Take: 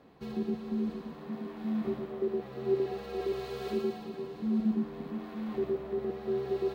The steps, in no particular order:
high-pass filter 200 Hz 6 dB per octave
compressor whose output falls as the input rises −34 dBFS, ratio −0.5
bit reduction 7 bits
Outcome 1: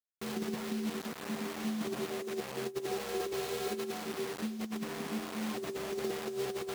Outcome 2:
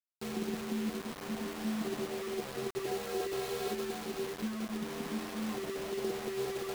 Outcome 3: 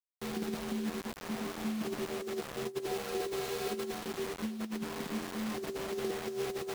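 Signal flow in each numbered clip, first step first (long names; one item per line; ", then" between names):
bit reduction, then high-pass filter, then compressor whose output falls as the input rises
high-pass filter, then compressor whose output falls as the input rises, then bit reduction
high-pass filter, then bit reduction, then compressor whose output falls as the input rises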